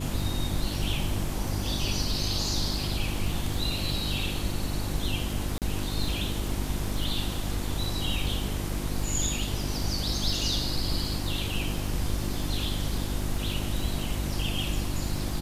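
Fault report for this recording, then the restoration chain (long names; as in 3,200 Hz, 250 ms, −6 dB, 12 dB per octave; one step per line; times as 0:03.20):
surface crackle 31 per second −35 dBFS
mains hum 50 Hz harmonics 7 −33 dBFS
0:05.58–0:05.62: drop-out 38 ms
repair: click removal
hum removal 50 Hz, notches 7
repair the gap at 0:05.58, 38 ms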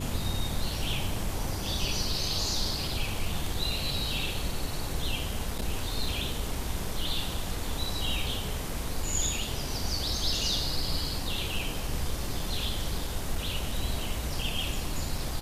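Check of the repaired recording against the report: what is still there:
none of them is left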